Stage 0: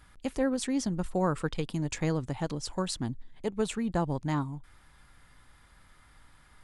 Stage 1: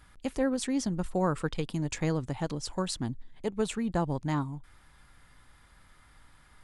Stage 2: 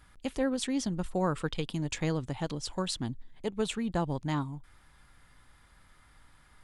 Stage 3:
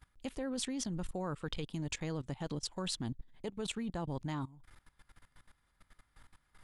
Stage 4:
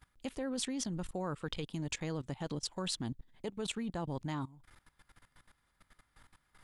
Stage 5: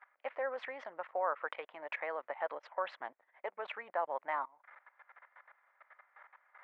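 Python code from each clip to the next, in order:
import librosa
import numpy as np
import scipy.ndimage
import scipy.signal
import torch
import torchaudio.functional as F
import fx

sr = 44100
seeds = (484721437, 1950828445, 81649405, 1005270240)

y1 = x
y2 = fx.dynamic_eq(y1, sr, hz=3300.0, q=1.8, threshold_db=-56.0, ratio=4.0, max_db=6)
y2 = F.gain(torch.from_numpy(y2), -1.5).numpy()
y3 = fx.level_steps(y2, sr, step_db=19)
y3 = F.gain(torch.from_numpy(y3), 1.0).numpy()
y4 = fx.low_shelf(y3, sr, hz=77.0, db=-6.0)
y4 = F.gain(torch.from_numpy(y4), 1.0).numpy()
y5 = scipy.signal.sosfilt(scipy.signal.ellip(3, 1.0, 80, [580.0, 2100.0], 'bandpass', fs=sr, output='sos'), y4)
y5 = F.gain(torch.from_numpy(y5), 9.0).numpy()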